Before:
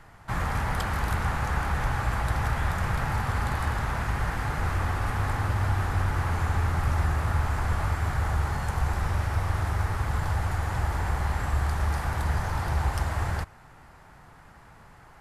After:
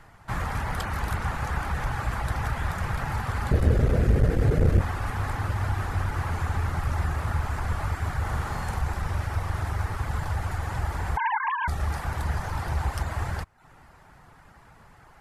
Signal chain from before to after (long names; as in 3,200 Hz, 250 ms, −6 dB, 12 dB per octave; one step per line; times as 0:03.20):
0:11.17–0:11.68: three sine waves on the formant tracks
reverb reduction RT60 0.5 s
0:03.51–0:04.81: low shelf with overshoot 660 Hz +11 dB, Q 3
0:08.22–0:08.78: flutter between parallel walls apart 8.4 metres, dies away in 0.58 s
saturating transformer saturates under 100 Hz